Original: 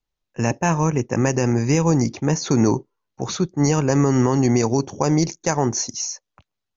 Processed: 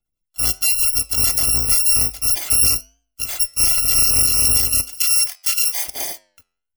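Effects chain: FFT order left unsorted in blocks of 256 samples; 4.84–5.86 HPF 1000 Hz 12 dB/oct; spectral gate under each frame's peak -30 dB strong; flange 1 Hz, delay 9.1 ms, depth 2.4 ms, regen -88%; gain +6.5 dB

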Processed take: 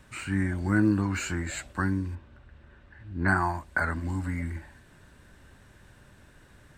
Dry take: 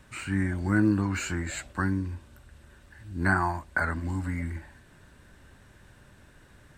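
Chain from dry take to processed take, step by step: 2.15–3.28 LPF 2900 Hz 12 dB/oct

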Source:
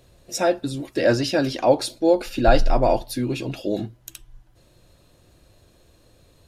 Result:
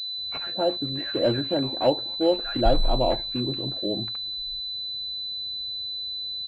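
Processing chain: bands offset in time highs, lows 0.18 s, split 1400 Hz; pulse-width modulation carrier 4000 Hz; gain -4 dB

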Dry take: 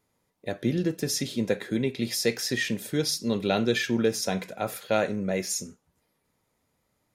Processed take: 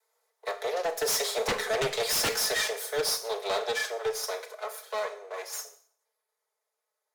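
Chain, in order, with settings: minimum comb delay 4.6 ms; Doppler pass-by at 1.8, 5 m/s, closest 2.7 m; steep high-pass 430 Hz 72 dB/oct; bell 2800 Hz -6.5 dB 0.55 oct; sine folder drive 15 dB, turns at -16.5 dBFS; Schroeder reverb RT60 0.55 s, combs from 27 ms, DRR 11 dB; gain -6.5 dB

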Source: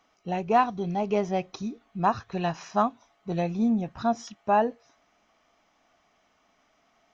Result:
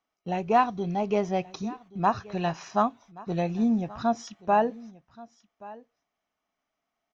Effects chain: gate -52 dBFS, range -17 dB; on a send: echo 1.128 s -20.5 dB

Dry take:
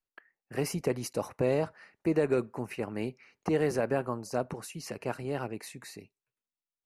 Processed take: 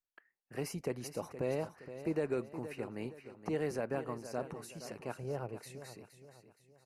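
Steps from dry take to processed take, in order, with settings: 5.17–5.63 graphic EQ 125/250/500/2000/4000/8000 Hz +6/-6/+6/-5/-6/-5 dB; feedback echo 0.469 s, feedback 41%, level -12 dB; gain -7.5 dB

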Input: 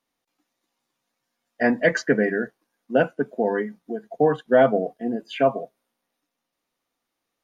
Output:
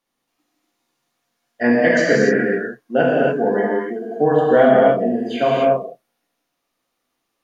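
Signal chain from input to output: non-linear reverb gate 0.32 s flat, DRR -5 dB

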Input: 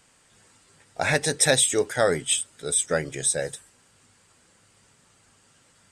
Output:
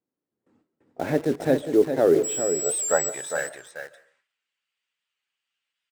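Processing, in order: gate with hold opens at -46 dBFS; band-pass sweep 310 Hz -> 2800 Hz, 1.95–4.18; 2.23–3.08 whine 7800 Hz -34 dBFS; high shelf 6300 Hz -4.5 dB; in parallel at -6 dB: bit-crush 7-bit; on the sum: echo 0.404 s -7.5 dB; on a send at -18 dB: reverb RT60 0.40 s, pre-delay 0.1 s; on the sum: record warp 78 rpm, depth 100 cents; gain +6.5 dB

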